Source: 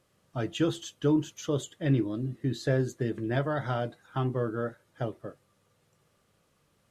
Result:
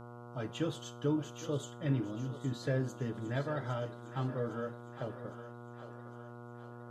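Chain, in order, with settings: notch comb 360 Hz; buzz 120 Hz, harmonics 12, -43 dBFS -4 dB/oct; on a send: thinning echo 0.809 s, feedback 55%, level -11 dB; on the sum: Schroeder reverb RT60 0.36 s, combs from 27 ms, DRR 15.5 dB; gain -6 dB

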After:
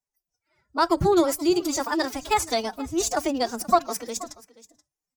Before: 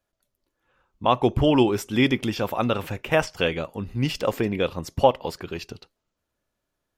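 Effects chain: speed mistake 33 rpm record played at 45 rpm; resonant high shelf 4600 Hz +7 dB, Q 3; notches 50/100/150 Hz; formant-preserving pitch shift +12 st; echo 0.479 s -19.5 dB; spectral noise reduction 14 dB

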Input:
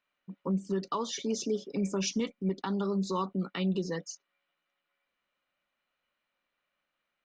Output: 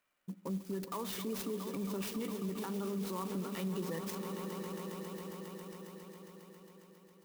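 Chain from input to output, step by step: swelling echo 0.136 s, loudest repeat 5, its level -17 dB; in parallel at -3 dB: compressor, threshold -43 dBFS, peak gain reduction 16.5 dB; on the sum: limiter -28 dBFS, peak gain reduction 9 dB; on a send at -20.5 dB: reverb RT60 0.45 s, pre-delay 42 ms; on the sum: clock jitter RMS 0.046 ms; gain -2.5 dB

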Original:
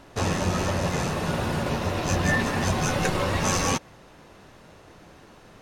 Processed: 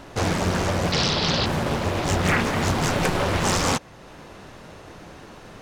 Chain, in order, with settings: in parallel at -1 dB: compressor, threshold -41 dBFS, peak gain reduction 20 dB; 0.92–1.46 on the sum: synth low-pass 4200 Hz, resonance Q 14; Doppler distortion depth 0.94 ms; gain +1.5 dB

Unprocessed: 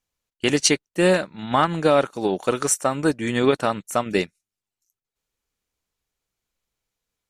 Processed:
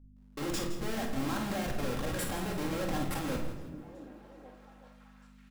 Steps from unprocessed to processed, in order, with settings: speed glide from 116% -> 149%; high shelf 6500 Hz -10.5 dB; in parallel at -3 dB: negative-ratio compressor -25 dBFS, ratio -0.5; on the sum: limiter -16 dBFS, peak gain reduction 11.5 dB; Schmitt trigger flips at -30.5 dBFS; hum 50 Hz, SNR 18 dB; doubler 49 ms -9 dB; on a send: delay with a stepping band-pass 0.379 s, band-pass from 170 Hz, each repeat 0.7 oct, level -9 dB; on the sum: shoebox room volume 980 m³, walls furnished, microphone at 2.2 m; lo-fi delay 0.165 s, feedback 35%, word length 9-bit, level -12 dB; gain -8 dB

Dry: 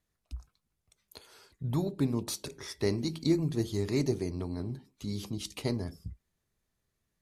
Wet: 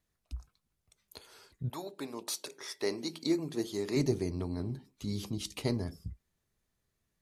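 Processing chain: 1.68–3.95 HPF 640 Hz -> 240 Hz 12 dB/oct

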